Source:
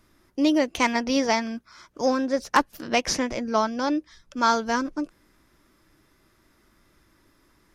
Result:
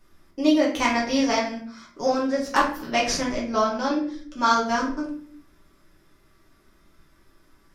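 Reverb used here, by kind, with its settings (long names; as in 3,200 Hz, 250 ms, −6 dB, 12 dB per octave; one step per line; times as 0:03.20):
rectangular room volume 58 cubic metres, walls mixed, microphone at 1.1 metres
level −4.5 dB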